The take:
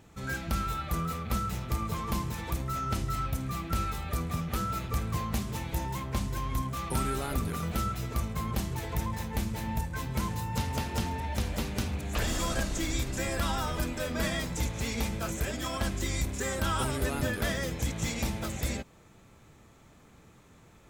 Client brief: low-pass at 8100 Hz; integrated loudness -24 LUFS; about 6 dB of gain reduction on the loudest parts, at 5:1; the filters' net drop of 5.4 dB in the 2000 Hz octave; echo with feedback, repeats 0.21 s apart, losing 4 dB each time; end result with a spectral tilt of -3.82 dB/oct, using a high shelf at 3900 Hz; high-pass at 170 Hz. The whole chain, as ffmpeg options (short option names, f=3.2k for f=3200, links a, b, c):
-af "highpass=170,lowpass=8.1k,equalizer=f=2k:t=o:g=-8.5,highshelf=f=3.9k:g=6.5,acompressor=threshold=-36dB:ratio=5,aecho=1:1:210|420|630|840|1050|1260|1470|1680|1890:0.631|0.398|0.25|0.158|0.0994|0.0626|0.0394|0.0249|0.0157,volume=13dB"